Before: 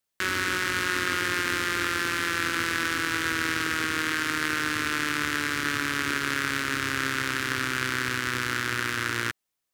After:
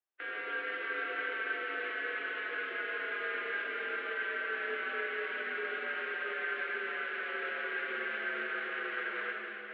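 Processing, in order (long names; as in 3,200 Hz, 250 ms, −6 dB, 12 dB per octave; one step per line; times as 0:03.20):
phase-vocoder pitch shift with formants kept +3 semitones
brickwall limiter −20.5 dBFS, peak gain reduction 5 dB
single-sideband voice off tune +70 Hz 250–3,000 Hz
high-shelf EQ 2,400 Hz −8 dB
convolution reverb RT60 4.9 s, pre-delay 3 ms, DRR −1.5 dB
level −7 dB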